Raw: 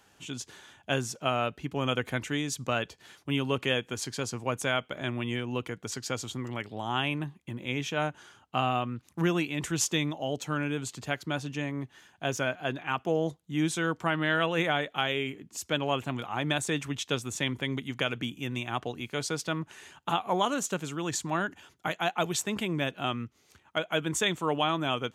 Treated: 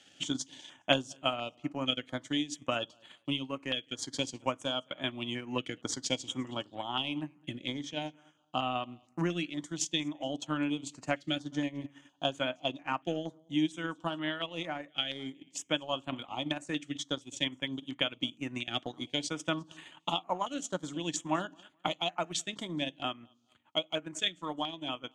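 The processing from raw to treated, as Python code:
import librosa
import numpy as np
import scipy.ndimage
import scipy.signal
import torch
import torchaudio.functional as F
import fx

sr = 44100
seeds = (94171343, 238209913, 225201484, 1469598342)

p1 = fx.cabinet(x, sr, low_hz=170.0, low_slope=12, high_hz=8400.0, hz=(200.0, 290.0, 420.0, 1500.0, 3200.0), db=(-8, 5, -9, -4, 8))
p2 = fx.rider(p1, sr, range_db=10, speed_s=0.5)
p3 = p2 + fx.echo_feedback(p2, sr, ms=211, feedback_pct=25, wet_db=-20.5, dry=0)
p4 = fx.rev_fdn(p3, sr, rt60_s=0.34, lf_ratio=1.45, hf_ratio=0.75, size_ms=32.0, drr_db=11.5)
p5 = fx.transient(p4, sr, attack_db=6, sustain_db=-9)
p6 = fx.filter_held_notch(p5, sr, hz=4.3, low_hz=990.0, high_hz=5500.0)
y = p6 * 10.0 ** (-5.5 / 20.0)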